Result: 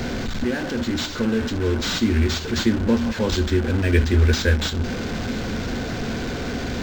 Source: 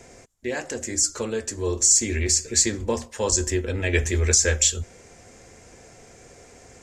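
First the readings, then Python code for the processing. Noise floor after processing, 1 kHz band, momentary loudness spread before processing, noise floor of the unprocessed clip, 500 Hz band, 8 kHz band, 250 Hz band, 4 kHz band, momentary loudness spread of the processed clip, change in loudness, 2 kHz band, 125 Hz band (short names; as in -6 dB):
-29 dBFS, +5.5 dB, 13 LU, -50 dBFS, +2.5 dB, -16.0 dB, +10.5 dB, +1.5 dB, 9 LU, -1.0 dB, +3.5 dB, +7.0 dB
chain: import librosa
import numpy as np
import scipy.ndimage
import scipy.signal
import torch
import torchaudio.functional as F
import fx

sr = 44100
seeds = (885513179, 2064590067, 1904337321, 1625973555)

y = fx.delta_mod(x, sr, bps=64000, step_db=-23.5)
y = fx.low_shelf(y, sr, hz=140.0, db=10.0)
y = fx.small_body(y, sr, hz=(230.0, 1500.0), ring_ms=30, db=12)
y = np.interp(np.arange(len(y)), np.arange(len(y))[::4], y[::4])
y = y * librosa.db_to_amplitude(-2.0)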